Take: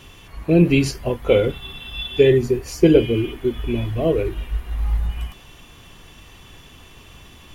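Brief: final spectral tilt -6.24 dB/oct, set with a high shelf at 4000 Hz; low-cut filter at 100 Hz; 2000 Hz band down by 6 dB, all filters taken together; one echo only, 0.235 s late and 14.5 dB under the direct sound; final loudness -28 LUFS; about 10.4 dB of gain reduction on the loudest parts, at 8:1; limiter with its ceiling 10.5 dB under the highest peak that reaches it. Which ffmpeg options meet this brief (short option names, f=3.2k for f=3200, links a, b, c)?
-af "highpass=100,equalizer=f=2k:t=o:g=-5.5,highshelf=f=4k:g=-8,acompressor=threshold=-19dB:ratio=8,alimiter=limit=-19.5dB:level=0:latency=1,aecho=1:1:235:0.188,volume=2.5dB"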